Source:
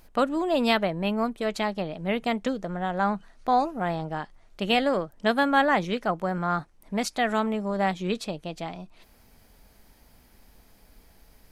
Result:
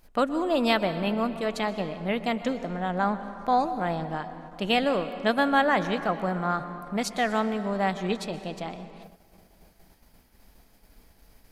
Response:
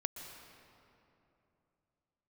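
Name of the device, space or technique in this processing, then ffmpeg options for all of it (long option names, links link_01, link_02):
keyed gated reverb: -filter_complex "[0:a]asplit=3[link_01][link_02][link_03];[1:a]atrim=start_sample=2205[link_04];[link_02][link_04]afir=irnorm=-1:irlink=0[link_05];[link_03]apad=whole_len=507790[link_06];[link_05][link_06]sidechaingate=range=-33dB:threshold=-54dB:ratio=16:detection=peak,volume=0.5dB[link_07];[link_01][link_07]amix=inputs=2:normalize=0,volume=-6.5dB"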